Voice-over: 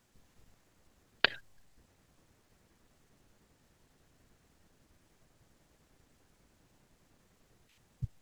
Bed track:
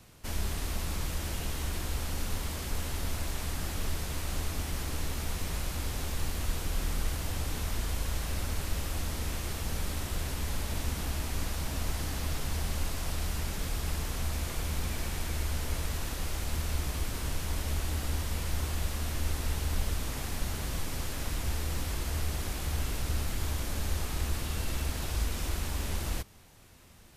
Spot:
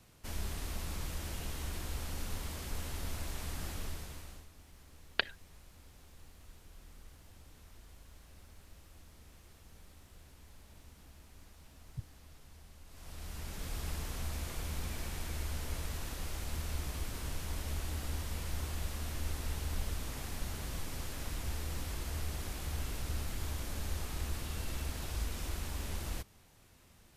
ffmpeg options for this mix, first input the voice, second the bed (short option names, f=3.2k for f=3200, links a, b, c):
-filter_complex "[0:a]adelay=3950,volume=-4.5dB[a];[1:a]volume=11.5dB,afade=t=out:st=3.69:d=0.78:silence=0.133352,afade=t=in:st=12.86:d=0.94:silence=0.133352[b];[a][b]amix=inputs=2:normalize=0"